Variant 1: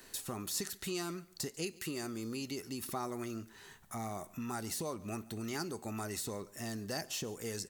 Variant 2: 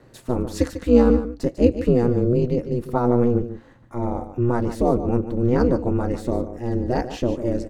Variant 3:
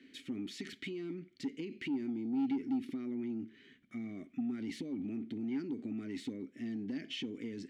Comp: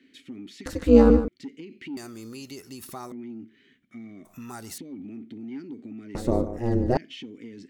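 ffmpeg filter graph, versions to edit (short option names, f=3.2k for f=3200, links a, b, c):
-filter_complex "[1:a]asplit=2[a][b];[0:a]asplit=2[c][d];[2:a]asplit=5[e][f][g][h][i];[e]atrim=end=0.662[j];[a]atrim=start=0.658:end=1.282[k];[f]atrim=start=1.278:end=1.972[l];[c]atrim=start=1.968:end=3.122[m];[g]atrim=start=3.118:end=4.252[n];[d]atrim=start=4.248:end=4.782[o];[h]atrim=start=4.778:end=6.152[p];[b]atrim=start=6.148:end=6.972[q];[i]atrim=start=6.968[r];[j][k]acrossfade=d=0.004:c1=hsin:c2=hsin[s];[s][l]acrossfade=d=0.004:c1=hsin:c2=hsin[t];[t][m]acrossfade=d=0.004:c1=hsin:c2=hsin[u];[u][n]acrossfade=d=0.004:c1=hsin:c2=hsin[v];[v][o]acrossfade=d=0.004:c1=hsin:c2=hsin[w];[w][p]acrossfade=d=0.004:c1=hsin:c2=hsin[x];[x][q]acrossfade=d=0.004:c1=hsin:c2=hsin[y];[y][r]acrossfade=d=0.004:c1=hsin:c2=hsin"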